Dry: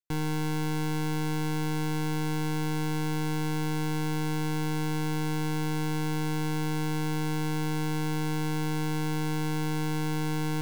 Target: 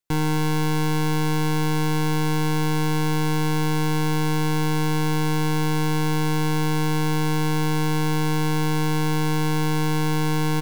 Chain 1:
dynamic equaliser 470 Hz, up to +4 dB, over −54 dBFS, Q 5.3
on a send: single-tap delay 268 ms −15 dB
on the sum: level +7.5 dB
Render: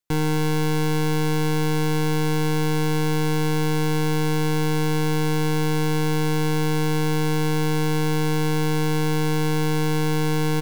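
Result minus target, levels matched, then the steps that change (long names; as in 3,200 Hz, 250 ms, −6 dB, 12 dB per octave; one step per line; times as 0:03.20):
500 Hz band +3.5 dB
change: dynamic equaliser 1,000 Hz, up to +4 dB, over −54 dBFS, Q 5.3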